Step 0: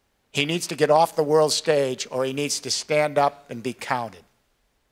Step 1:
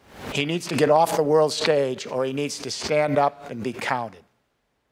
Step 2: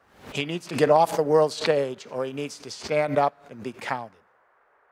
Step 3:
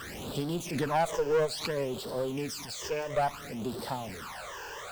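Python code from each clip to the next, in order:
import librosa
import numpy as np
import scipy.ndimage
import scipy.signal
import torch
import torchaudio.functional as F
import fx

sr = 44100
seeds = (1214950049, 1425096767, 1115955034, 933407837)

y1 = scipy.signal.sosfilt(scipy.signal.butter(2, 75.0, 'highpass', fs=sr, output='sos'), x)
y1 = fx.high_shelf(y1, sr, hz=3700.0, db=-9.5)
y1 = fx.pre_swell(y1, sr, db_per_s=97.0)
y2 = fx.dmg_noise_band(y1, sr, seeds[0], low_hz=410.0, high_hz=1700.0, level_db=-51.0)
y2 = fx.upward_expand(y2, sr, threshold_db=-38.0, expansion=1.5)
y3 = y2 + 0.5 * 10.0 ** (-27.0 / 20.0) * np.sign(y2)
y3 = fx.phaser_stages(y3, sr, stages=12, low_hz=210.0, high_hz=2300.0, hz=0.59, feedback_pct=25)
y3 = fx.tube_stage(y3, sr, drive_db=17.0, bias=0.55)
y3 = y3 * librosa.db_to_amplitude(-3.5)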